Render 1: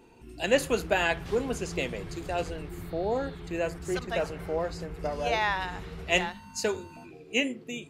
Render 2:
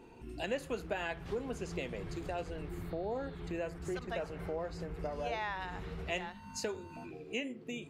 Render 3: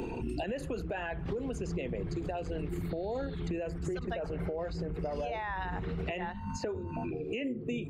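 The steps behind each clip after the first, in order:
high-shelf EQ 3,700 Hz −7 dB; downward compressor 2.5 to 1, threshold −40 dBFS, peak gain reduction 15 dB; level +1 dB
spectral envelope exaggerated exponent 1.5; brickwall limiter −33 dBFS, peak gain reduction 10 dB; multiband upward and downward compressor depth 100%; level +5.5 dB

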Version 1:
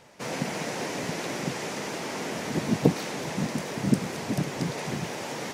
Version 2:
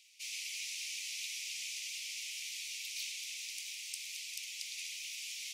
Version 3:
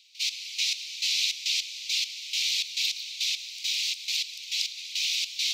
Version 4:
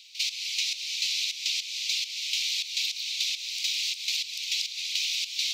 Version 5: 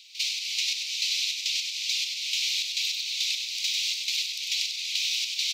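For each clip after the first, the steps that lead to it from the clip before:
Butterworth high-pass 2,300 Hz 72 dB per octave; level −1.5 dB
graphic EQ with 15 bands 1,600 Hz −6 dB, 4,000 Hz +11 dB, 10,000 Hz −11 dB; in parallel at 0 dB: brickwall limiter −30.5 dBFS, peak gain reduction 10.5 dB; on the sum: gate pattern ".x..x..xx" 103 BPM −12 dB; level +7 dB
downward compressor, threshold −34 dBFS, peak gain reduction 11.5 dB; level +7.5 dB
single-tap delay 97 ms −4.5 dB

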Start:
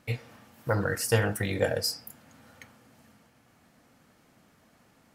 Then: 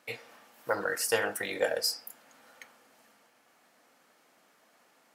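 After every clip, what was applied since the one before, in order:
high-pass filter 440 Hz 12 dB per octave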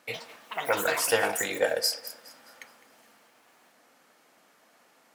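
feedback echo with a high-pass in the loop 208 ms, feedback 43%, high-pass 420 Hz, level −17.5 dB
delay with pitch and tempo change per echo 83 ms, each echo +6 semitones, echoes 2, each echo −6 dB
level +3 dB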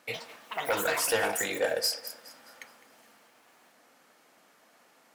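soft clipping −19.5 dBFS, distortion −14 dB

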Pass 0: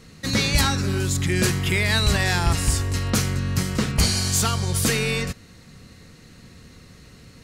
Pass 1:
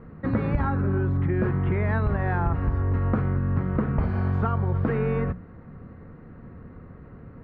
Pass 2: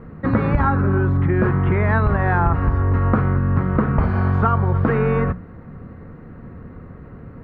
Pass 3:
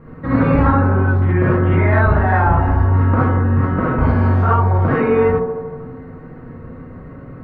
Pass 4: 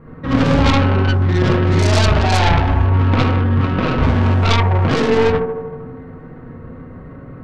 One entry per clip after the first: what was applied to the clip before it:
low-pass filter 1,400 Hz 24 dB per octave; mains-hum notches 60/120/180 Hz; downward compressor, threshold −24 dBFS, peak gain reduction 8.5 dB; level +4 dB
dynamic equaliser 1,200 Hz, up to +5 dB, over −42 dBFS, Q 1.2; level +6 dB
delay with a band-pass on its return 78 ms, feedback 72%, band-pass 410 Hz, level −3.5 dB; reverb whose tail is shaped and stops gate 90 ms rising, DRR −6.5 dB; level −4 dB
stylus tracing distortion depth 0.5 ms

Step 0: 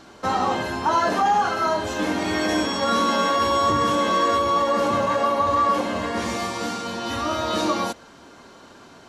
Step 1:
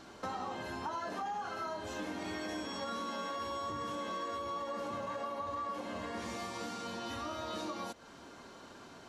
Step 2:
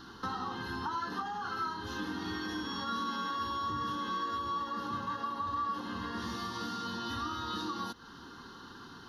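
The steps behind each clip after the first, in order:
downward compressor 4 to 1, threshold −33 dBFS, peak gain reduction 14 dB; level −6 dB
phaser with its sweep stopped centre 2,300 Hz, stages 6; level +6 dB

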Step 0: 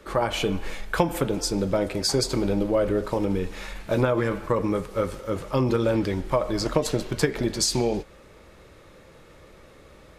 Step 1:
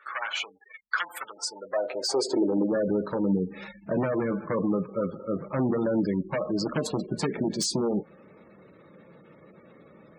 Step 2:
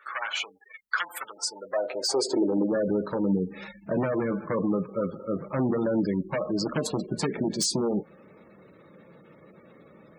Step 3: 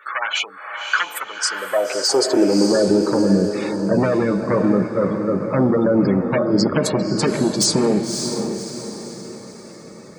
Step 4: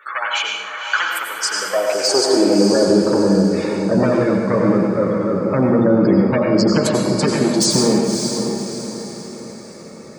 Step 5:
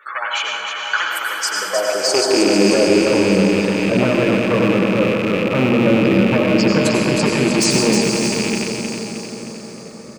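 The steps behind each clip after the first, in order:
wave folding −18.5 dBFS; gate on every frequency bin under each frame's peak −20 dB strong; high-pass filter sweep 1,400 Hz → 180 Hz, 0:01.28–0:02.86; level −3 dB
high-shelf EQ 7,700 Hz +5.5 dB
feedback delay with all-pass diffusion 565 ms, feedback 44%, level −6 dB; level +8.5 dB
convolution reverb, pre-delay 83 ms, DRR 1.5 dB
loose part that buzzes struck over −25 dBFS, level −12 dBFS; repeating echo 311 ms, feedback 52%, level −5.5 dB; level −1 dB

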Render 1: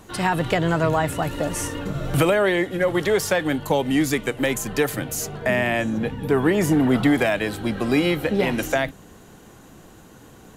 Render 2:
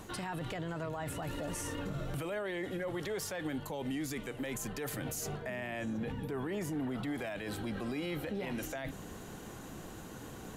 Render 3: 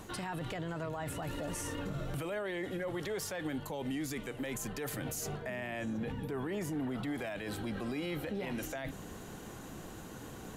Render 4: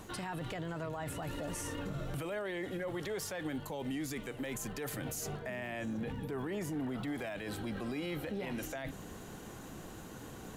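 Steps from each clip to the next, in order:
reversed playback; downward compressor 6 to 1, threshold −29 dBFS, peak gain reduction 14.5 dB; reversed playback; brickwall limiter −30 dBFS, peak gain reduction 11 dB
no processing that can be heard
surface crackle 100 per second −51 dBFS; level −1 dB

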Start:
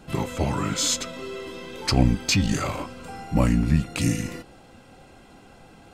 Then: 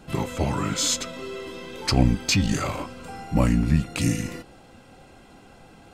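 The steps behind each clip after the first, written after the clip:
no processing that can be heard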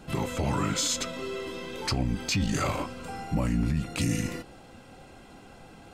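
brickwall limiter −17.5 dBFS, peak gain reduction 11 dB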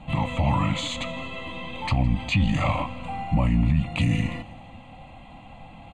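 high-frequency loss of the air 120 metres
phaser with its sweep stopped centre 1,500 Hz, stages 6
repeating echo 161 ms, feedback 56%, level −21.5 dB
level +8 dB

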